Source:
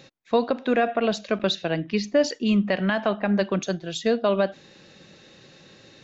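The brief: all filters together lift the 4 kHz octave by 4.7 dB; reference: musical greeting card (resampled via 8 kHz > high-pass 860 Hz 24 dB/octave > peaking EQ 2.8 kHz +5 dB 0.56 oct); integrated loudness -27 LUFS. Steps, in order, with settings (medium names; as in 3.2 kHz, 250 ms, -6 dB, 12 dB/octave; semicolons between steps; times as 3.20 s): peaking EQ 4 kHz +3 dB; resampled via 8 kHz; high-pass 860 Hz 24 dB/octave; peaking EQ 2.8 kHz +5 dB 0.56 oct; trim +3 dB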